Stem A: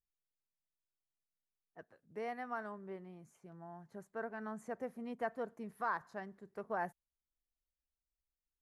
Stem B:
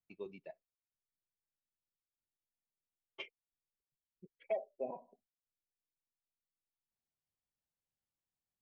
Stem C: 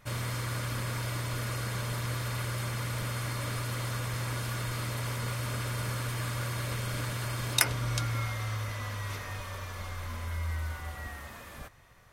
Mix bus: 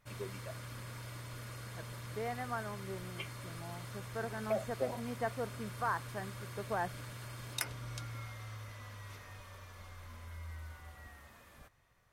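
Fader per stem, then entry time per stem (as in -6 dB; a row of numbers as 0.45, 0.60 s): +2.0, +2.0, -12.5 dB; 0.00, 0.00, 0.00 s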